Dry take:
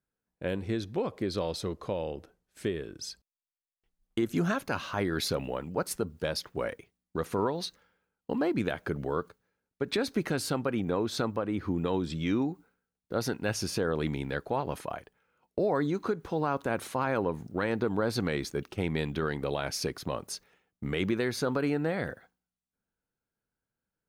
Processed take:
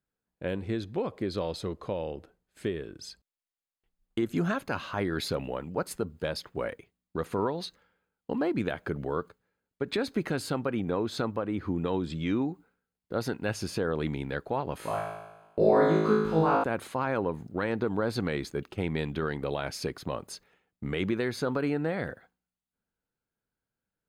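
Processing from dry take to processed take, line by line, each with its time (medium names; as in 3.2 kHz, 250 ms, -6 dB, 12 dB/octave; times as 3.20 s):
14.77–16.64 s: flutter echo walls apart 3.2 m, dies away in 1 s
whole clip: treble shelf 5.9 kHz -6 dB; band-stop 5.7 kHz, Q 7.3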